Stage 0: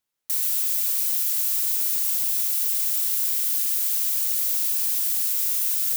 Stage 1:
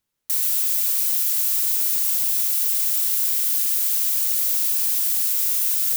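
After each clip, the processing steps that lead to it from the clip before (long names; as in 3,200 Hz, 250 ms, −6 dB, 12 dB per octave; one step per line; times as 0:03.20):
low-shelf EQ 290 Hz +9.5 dB
notch filter 720 Hz, Q 12
level +2.5 dB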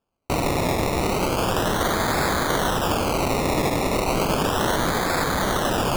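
in parallel at +1.5 dB: brickwall limiter −14 dBFS, peak gain reduction 6.5 dB
on the sum: sample-and-hold swept by an LFO 22×, swing 60% 0.34 Hz
level −6.5 dB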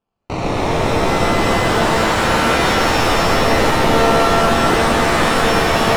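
high-frequency loss of the air 110 metres
reverb with rising layers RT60 3.2 s, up +7 semitones, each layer −2 dB, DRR −4.5 dB
level −1 dB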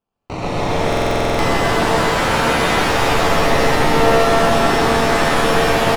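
on a send: multi-tap delay 125/132 ms −4/−3.5 dB
on the sum: buffer that repeats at 0:00.88, samples 2,048, times 10
level −3.5 dB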